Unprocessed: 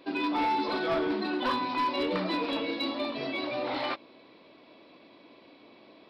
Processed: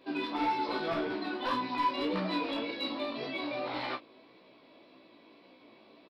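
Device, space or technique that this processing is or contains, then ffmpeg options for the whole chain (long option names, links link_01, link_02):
double-tracked vocal: -filter_complex "[0:a]asplit=2[link_01][link_02];[link_02]adelay=31,volume=-7dB[link_03];[link_01][link_03]amix=inputs=2:normalize=0,flanger=delay=15.5:depth=3.1:speed=1.8,volume=-1dB"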